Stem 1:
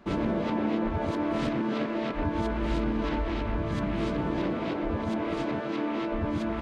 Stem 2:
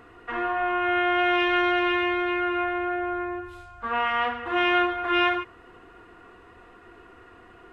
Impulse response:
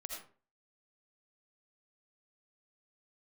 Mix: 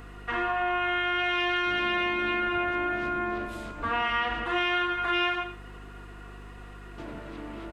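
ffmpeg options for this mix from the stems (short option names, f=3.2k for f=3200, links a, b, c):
-filter_complex "[0:a]adelay=1600,volume=-11dB,asplit=3[a][b][c];[a]atrim=end=4.44,asetpts=PTS-STARTPTS,afade=t=out:st=4.436:d=0.004:c=hsin[d];[b]atrim=start=4.44:end=6.98,asetpts=PTS-STARTPTS,volume=0[e];[c]atrim=start=6.98,asetpts=PTS-STARTPTS,afade=t=in:d=0.004:c=hsin[f];[d][e][f]concat=n=3:v=0:a=1[g];[1:a]highshelf=f=3k:g=11.5,aeval=exprs='val(0)+0.00631*(sin(2*PI*50*n/s)+sin(2*PI*2*50*n/s)/2+sin(2*PI*3*50*n/s)/3+sin(2*PI*4*50*n/s)/4+sin(2*PI*5*50*n/s)/5)':c=same,volume=-3dB,asplit=2[h][i];[i]volume=-4.5dB[j];[2:a]atrim=start_sample=2205[k];[j][k]afir=irnorm=-1:irlink=0[l];[g][h][l]amix=inputs=3:normalize=0,acompressor=threshold=-25dB:ratio=3"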